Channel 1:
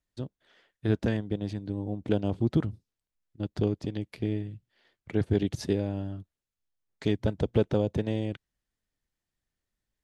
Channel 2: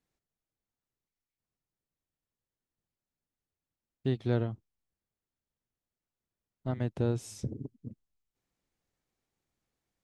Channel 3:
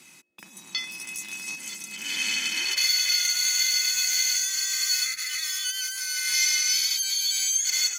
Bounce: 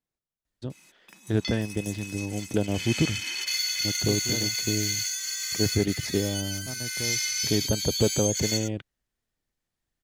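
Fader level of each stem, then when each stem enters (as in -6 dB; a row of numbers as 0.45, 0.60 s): +1.0, -6.0, -5.0 dB; 0.45, 0.00, 0.70 s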